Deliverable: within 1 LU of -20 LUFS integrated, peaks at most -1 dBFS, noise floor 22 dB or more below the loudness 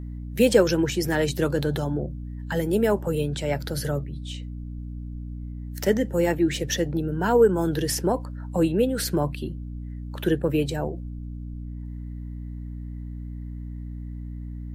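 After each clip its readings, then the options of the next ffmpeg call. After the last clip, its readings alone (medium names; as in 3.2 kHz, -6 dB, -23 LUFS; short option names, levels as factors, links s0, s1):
hum 60 Hz; highest harmonic 300 Hz; hum level -32 dBFS; loudness -24.5 LUFS; peak level -5.5 dBFS; loudness target -20.0 LUFS
-> -af "bandreject=f=60:t=h:w=6,bandreject=f=120:t=h:w=6,bandreject=f=180:t=h:w=6,bandreject=f=240:t=h:w=6,bandreject=f=300:t=h:w=6"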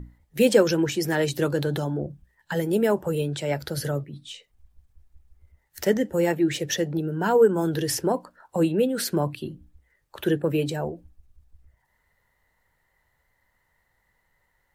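hum not found; loudness -24.5 LUFS; peak level -6.0 dBFS; loudness target -20.0 LUFS
-> -af "volume=1.68"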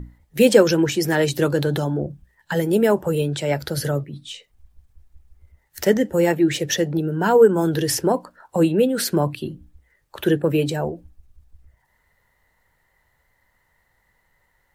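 loudness -20.0 LUFS; peak level -1.5 dBFS; noise floor -66 dBFS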